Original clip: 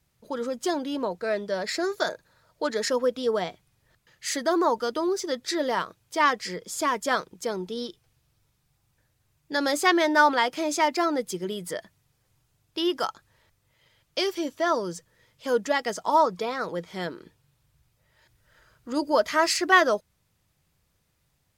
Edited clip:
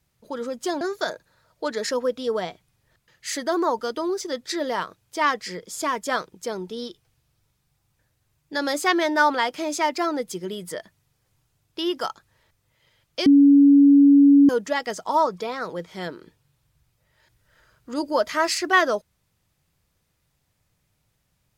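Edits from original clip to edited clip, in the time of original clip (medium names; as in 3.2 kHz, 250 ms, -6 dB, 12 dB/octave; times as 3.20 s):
0.81–1.80 s: delete
14.25–15.48 s: bleep 282 Hz -9.5 dBFS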